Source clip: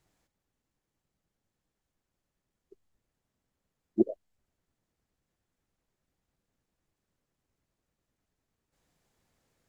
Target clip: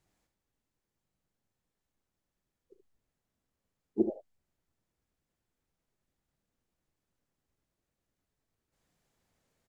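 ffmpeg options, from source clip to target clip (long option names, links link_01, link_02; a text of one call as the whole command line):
ffmpeg -i in.wav -filter_complex "[0:a]asplit=2[link_01][link_02];[link_02]asetrate=55563,aresample=44100,atempo=0.793701,volume=-12dB[link_03];[link_01][link_03]amix=inputs=2:normalize=0,aecho=1:1:37|75:0.211|0.355,volume=-3.5dB" out.wav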